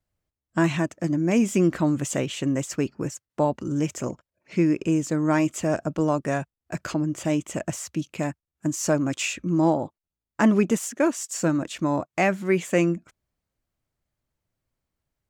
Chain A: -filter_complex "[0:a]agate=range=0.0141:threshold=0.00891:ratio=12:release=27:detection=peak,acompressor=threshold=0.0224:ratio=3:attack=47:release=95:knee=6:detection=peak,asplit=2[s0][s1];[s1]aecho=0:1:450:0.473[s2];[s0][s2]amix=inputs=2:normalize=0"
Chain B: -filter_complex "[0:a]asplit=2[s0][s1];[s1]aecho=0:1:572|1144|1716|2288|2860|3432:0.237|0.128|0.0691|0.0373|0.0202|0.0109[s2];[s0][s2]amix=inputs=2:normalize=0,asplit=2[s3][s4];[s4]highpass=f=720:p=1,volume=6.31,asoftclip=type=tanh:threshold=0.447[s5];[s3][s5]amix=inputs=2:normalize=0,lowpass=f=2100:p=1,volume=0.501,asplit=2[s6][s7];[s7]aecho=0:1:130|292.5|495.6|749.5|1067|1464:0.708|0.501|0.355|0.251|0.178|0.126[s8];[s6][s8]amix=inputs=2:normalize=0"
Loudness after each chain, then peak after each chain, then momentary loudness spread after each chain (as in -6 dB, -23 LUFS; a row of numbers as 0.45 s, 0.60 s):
-31.0 LUFS, -19.5 LUFS; -12.5 dBFS, -4.5 dBFS; 6 LU, 9 LU